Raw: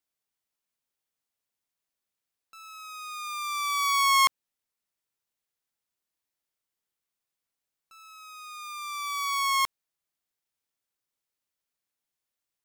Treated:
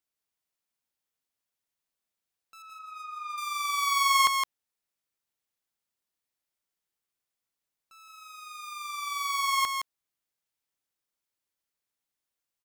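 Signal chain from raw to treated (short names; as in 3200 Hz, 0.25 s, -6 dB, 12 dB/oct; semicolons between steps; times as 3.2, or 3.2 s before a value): 2.62–3.38 formant sharpening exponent 2; echo 0.165 s -5 dB; gain -2 dB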